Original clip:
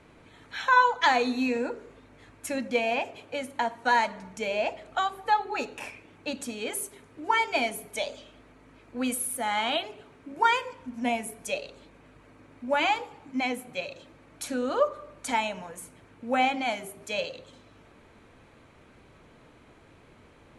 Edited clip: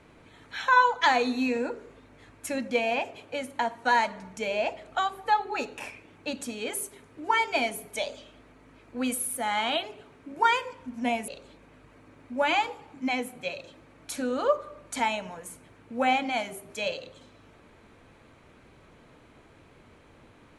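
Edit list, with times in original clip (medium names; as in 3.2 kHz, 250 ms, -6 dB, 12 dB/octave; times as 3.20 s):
11.28–11.60 s: delete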